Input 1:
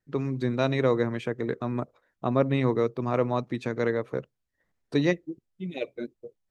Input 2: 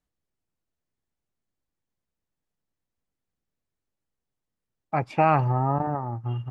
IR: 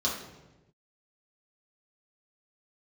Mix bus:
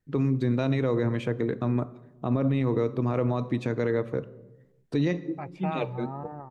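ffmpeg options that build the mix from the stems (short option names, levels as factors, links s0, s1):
-filter_complex "[0:a]lowshelf=f=330:g=6.5,volume=1,asplit=2[s0][s1];[s1]volume=0.0794[s2];[1:a]adelay=450,volume=0.224[s3];[2:a]atrim=start_sample=2205[s4];[s2][s4]afir=irnorm=-1:irlink=0[s5];[s0][s3][s5]amix=inputs=3:normalize=0,alimiter=limit=0.15:level=0:latency=1:release=34"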